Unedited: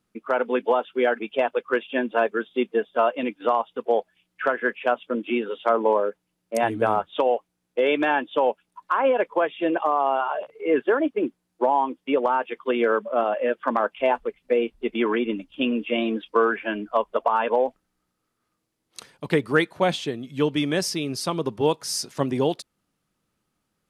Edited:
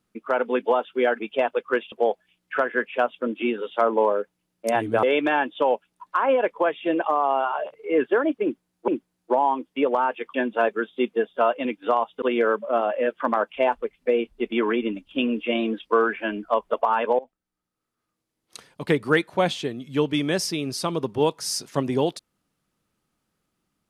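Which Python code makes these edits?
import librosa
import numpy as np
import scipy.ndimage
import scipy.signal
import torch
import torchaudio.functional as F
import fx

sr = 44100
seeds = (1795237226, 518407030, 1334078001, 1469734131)

y = fx.edit(x, sr, fx.move(start_s=1.92, length_s=1.88, to_s=12.65),
    fx.cut(start_s=6.91, length_s=0.88),
    fx.repeat(start_s=11.19, length_s=0.45, count=2),
    fx.fade_in_from(start_s=17.62, length_s=1.65, floor_db=-19.5), tone=tone)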